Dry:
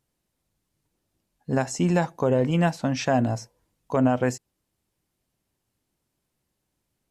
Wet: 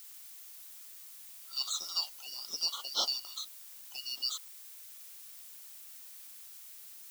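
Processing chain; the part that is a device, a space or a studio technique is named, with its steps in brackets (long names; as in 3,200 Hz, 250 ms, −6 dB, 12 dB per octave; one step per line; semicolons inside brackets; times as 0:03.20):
Butterworth high-pass 1,500 Hz 72 dB per octave
split-band scrambled radio (band-splitting scrambler in four parts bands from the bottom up 3142; band-pass filter 330–3,100 Hz; white noise bed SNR 14 dB)
spectral tilt +3.5 dB per octave
level +2.5 dB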